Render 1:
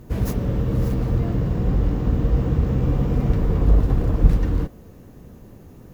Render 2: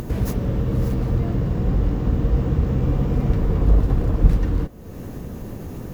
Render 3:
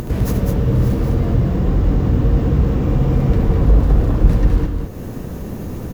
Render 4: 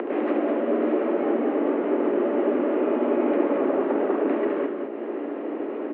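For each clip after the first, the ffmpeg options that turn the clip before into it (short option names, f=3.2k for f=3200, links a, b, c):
-af "acompressor=mode=upward:threshold=-20dB:ratio=2.5"
-af "aecho=1:1:72.89|204.1:0.316|0.562,asoftclip=type=tanh:threshold=-4dB,volume=4dB"
-af "aeval=exprs='val(0)+0.0708*(sin(2*PI*60*n/s)+sin(2*PI*2*60*n/s)/2+sin(2*PI*3*60*n/s)/3+sin(2*PI*4*60*n/s)/4+sin(2*PI*5*60*n/s)/5)':c=same,highpass=f=190:t=q:w=0.5412,highpass=f=190:t=q:w=1.307,lowpass=f=2.6k:t=q:w=0.5176,lowpass=f=2.6k:t=q:w=0.7071,lowpass=f=2.6k:t=q:w=1.932,afreqshift=110"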